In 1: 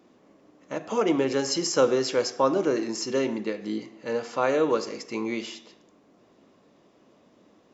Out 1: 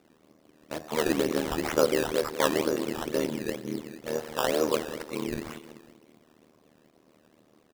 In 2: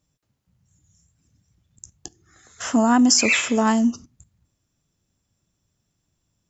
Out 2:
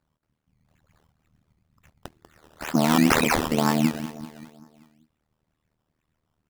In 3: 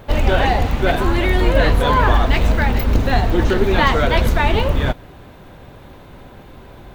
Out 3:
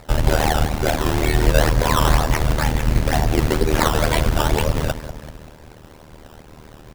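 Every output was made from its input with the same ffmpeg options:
-filter_complex "[0:a]asplit=2[link_01][link_02];[link_02]adelay=193,lowpass=frequency=3800:poles=1,volume=-12.5dB,asplit=2[link_03][link_04];[link_04]adelay=193,lowpass=frequency=3800:poles=1,volume=0.54,asplit=2[link_05][link_06];[link_06]adelay=193,lowpass=frequency=3800:poles=1,volume=0.54,asplit=2[link_07][link_08];[link_08]adelay=193,lowpass=frequency=3800:poles=1,volume=0.54,asplit=2[link_09][link_10];[link_10]adelay=193,lowpass=frequency=3800:poles=1,volume=0.54,asplit=2[link_11][link_12];[link_12]adelay=193,lowpass=frequency=3800:poles=1,volume=0.54[link_13];[link_01][link_03][link_05][link_07][link_09][link_11][link_13]amix=inputs=7:normalize=0,tremolo=f=77:d=0.974,acrusher=samples=14:mix=1:aa=0.000001:lfo=1:lforange=14:lforate=2.1,volume=1dB"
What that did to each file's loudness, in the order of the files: −2.5, −4.0, −2.5 LU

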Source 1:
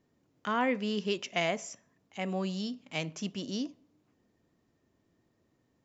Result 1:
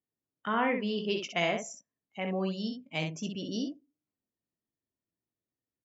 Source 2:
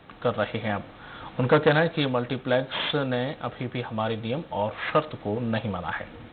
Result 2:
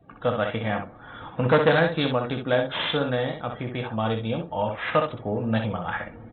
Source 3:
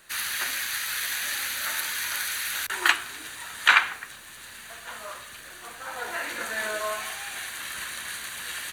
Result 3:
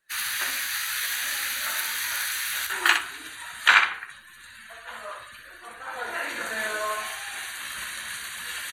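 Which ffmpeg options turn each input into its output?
-af "afftdn=noise_reduction=24:noise_floor=-46,aecho=1:1:18|63:0.316|0.501"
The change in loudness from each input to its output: +1.0, +1.5, +1.5 LU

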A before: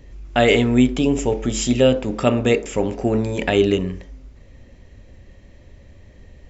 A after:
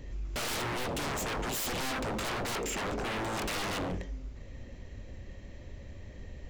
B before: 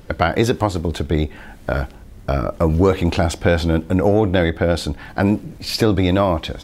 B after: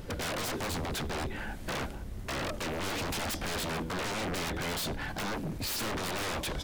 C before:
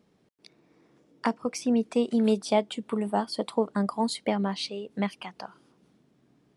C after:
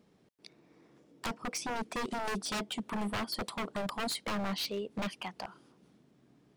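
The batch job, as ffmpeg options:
-af "aeval=exprs='(tanh(6.31*val(0)+0.15)-tanh(0.15))/6.31':channel_layout=same,aeval=exprs='0.0355*(abs(mod(val(0)/0.0355+3,4)-2)-1)':channel_layout=same"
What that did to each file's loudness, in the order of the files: −15.0, −15.0, −8.5 LU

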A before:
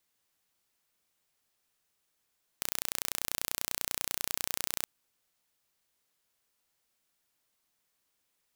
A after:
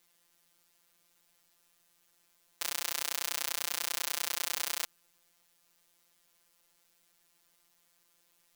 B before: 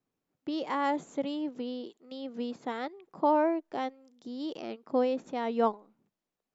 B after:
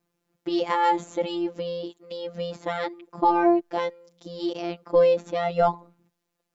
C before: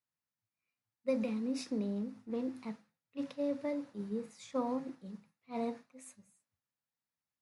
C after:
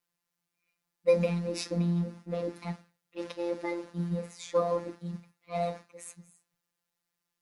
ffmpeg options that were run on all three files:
-af "apsyclip=18dB,afftfilt=real='hypot(re,im)*cos(PI*b)':imag='0':win_size=1024:overlap=0.75,volume=-6.5dB"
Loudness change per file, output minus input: +1.0, +7.0, +6.0 LU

